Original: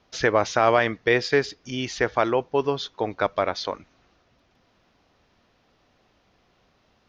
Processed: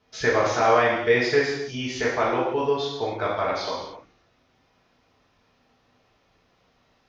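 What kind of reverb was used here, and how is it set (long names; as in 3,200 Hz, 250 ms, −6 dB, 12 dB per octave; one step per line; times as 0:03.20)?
reverb whose tail is shaped and stops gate 320 ms falling, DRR −6.5 dB
level −7 dB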